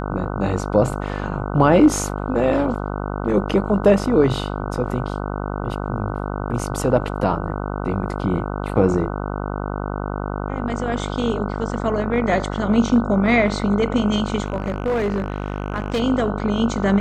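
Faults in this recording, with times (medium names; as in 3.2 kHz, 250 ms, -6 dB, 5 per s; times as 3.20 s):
buzz 50 Hz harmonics 30 -26 dBFS
14.44–16.01 s: clipped -17 dBFS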